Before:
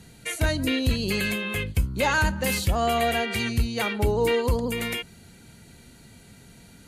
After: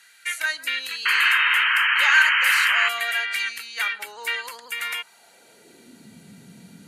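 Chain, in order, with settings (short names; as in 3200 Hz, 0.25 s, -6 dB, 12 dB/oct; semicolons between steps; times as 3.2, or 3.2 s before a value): painted sound noise, 1.05–2.89, 860–3200 Hz -24 dBFS; high-pass sweep 1600 Hz -> 180 Hz, 4.75–6.16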